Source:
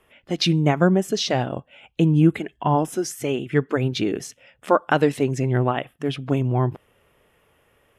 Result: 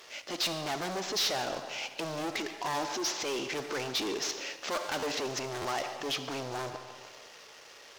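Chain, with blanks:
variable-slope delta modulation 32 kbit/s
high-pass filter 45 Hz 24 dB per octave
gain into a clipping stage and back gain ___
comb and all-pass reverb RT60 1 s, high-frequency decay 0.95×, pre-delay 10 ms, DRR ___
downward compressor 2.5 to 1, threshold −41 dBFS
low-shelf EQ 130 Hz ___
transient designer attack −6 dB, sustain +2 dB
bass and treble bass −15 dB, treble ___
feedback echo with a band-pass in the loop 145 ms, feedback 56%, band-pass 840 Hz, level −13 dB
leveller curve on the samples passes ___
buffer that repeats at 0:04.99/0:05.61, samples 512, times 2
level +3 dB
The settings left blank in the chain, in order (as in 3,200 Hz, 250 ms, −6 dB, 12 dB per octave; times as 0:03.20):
23.5 dB, 15 dB, −11 dB, +11 dB, 2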